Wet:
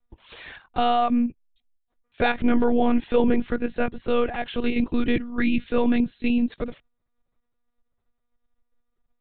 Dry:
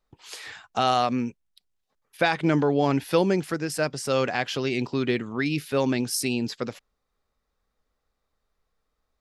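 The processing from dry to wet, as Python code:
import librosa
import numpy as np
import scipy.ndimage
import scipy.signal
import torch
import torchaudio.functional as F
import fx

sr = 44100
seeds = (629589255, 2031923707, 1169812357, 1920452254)

p1 = fx.low_shelf(x, sr, hz=340.0, db=9.0)
p2 = fx.level_steps(p1, sr, step_db=22)
p3 = p1 + (p2 * 10.0 ** (2.0 / 20.0))
p4 = fx.lpc_monotone(p3, sr, seeds[0], pitch_hz=240.0, order=16)
y = p4 * 10.0 ** (-6.0 / 20.0)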